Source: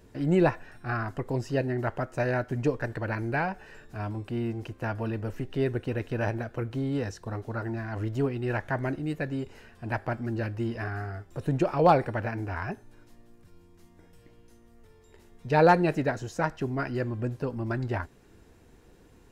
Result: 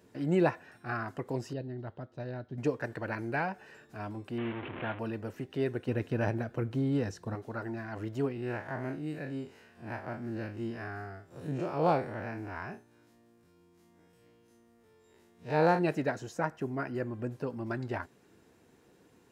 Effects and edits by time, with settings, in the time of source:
1.53–2.58 EQ curve 100 Hz 0 dB, 170 Hz -4 dB, 2400 Hz -17 dB, 3700 Hz -3 dB, 7900 Hz -27 dB
4.38–4.99 delta modulation 16 kbps, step -29.5 dBFS
5.88–7.35 low shelf 260 Hz +8.5 dB
8.32–15.79 time blur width 83 ms
16.31–17.46 dynamic EQ 4100 Hz, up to -8 dB, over -53 dBFS, Q 1
whole clip: HPF 140 Hz 12 dB/oct; gain -3.5 dB

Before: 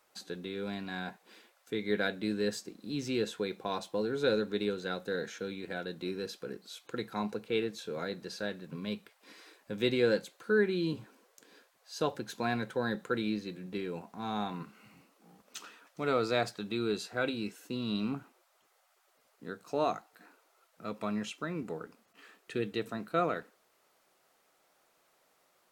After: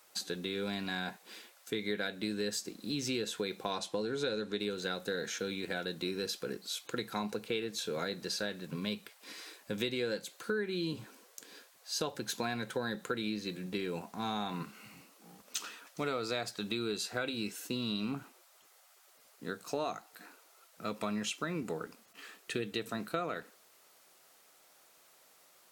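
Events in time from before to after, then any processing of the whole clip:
3.71–4.6 LPF 9700 Hz
whole clip: high shelf 2800 Hz +9 dB; compressor 6:1, threshold -34 dBFS; gain +2.5 dB

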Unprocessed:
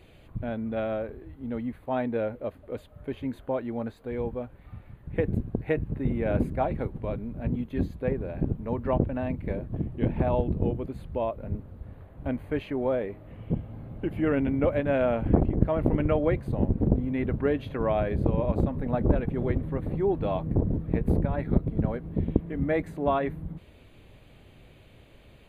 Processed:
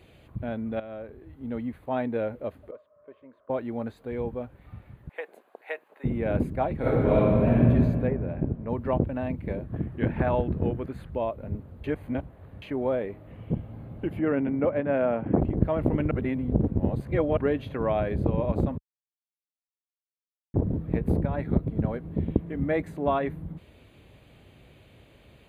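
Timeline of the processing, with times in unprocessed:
0.8–1.47 fade in, from -13.5 dB
2.71–3.5 double band-pass 810 Hz, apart 0.83 oct
5.09–6.04 HPF 630 Hz 24 dB/oct
6.79–7.55 reverb throw, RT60 2.2 s, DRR -12 dB
8.07–8.7 LPF 2600 Hz
9.68–11.1 bell 1600 Hz +9.5 dB 0.88 oct
11.84–12.62 reverse
14.19–15.38 BPF 140–2100 Hz
16.11–17.37 reverse
18.78–20.54 mute
whole clip: HPF 50 Hz

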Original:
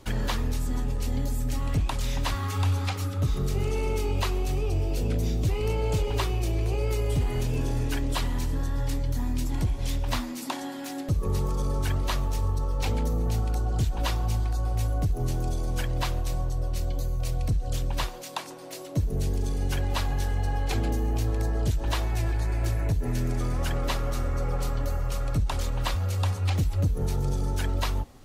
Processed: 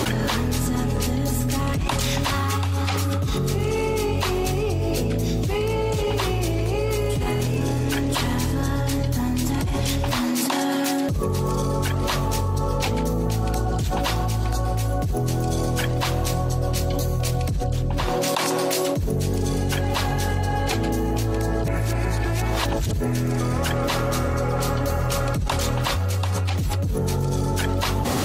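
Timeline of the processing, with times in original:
17.64–18.28 tilt -2 dB/oct
21.64–22.93 reverse
whole clip: HPF 96 Hz 12 dB/oct; fast leveller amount 100%

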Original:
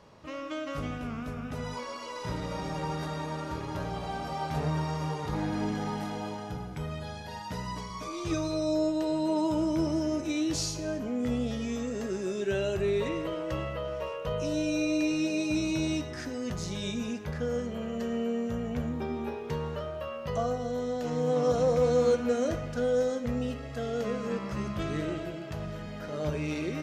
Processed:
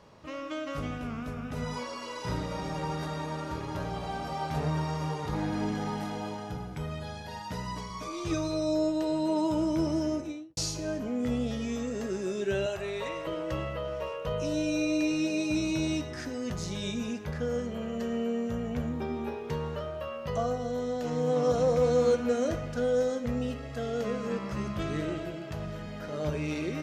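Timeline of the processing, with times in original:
1.53–2.43 doubler 33 ms -4 dB
10.05–10.57 studio fade out
12.66–13.27 resonant low shelf 470 Hz -9 dB, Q 1.5

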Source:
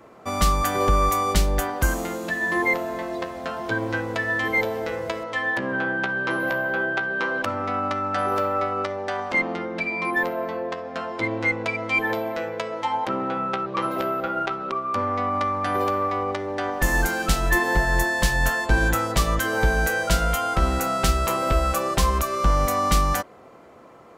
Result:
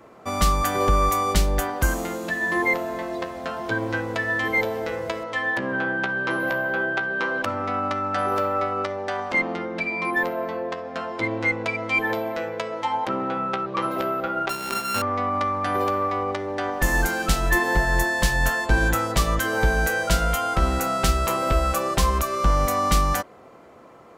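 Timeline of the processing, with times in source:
14.49–15.02 sample sorter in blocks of 32 samples

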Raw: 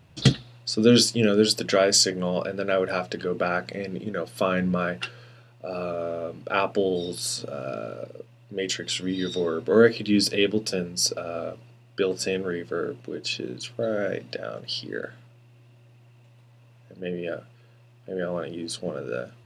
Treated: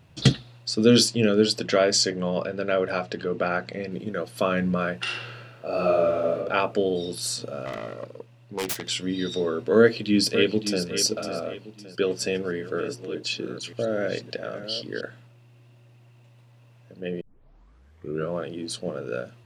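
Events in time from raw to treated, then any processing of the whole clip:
1.08–3.92 air absorption 52 m
5.02–6.36 reverb throw, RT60 1.1 s, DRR -5.5 dB
7.65–8.88 self-modulated delay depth 0.58 ms
9.78–10.83 echo throw 0.56 s, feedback 35%, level -9.5 dB
12–15.01 reverse delay 0.576 s, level -11.5 dB
17.21 tape start 1.13 s

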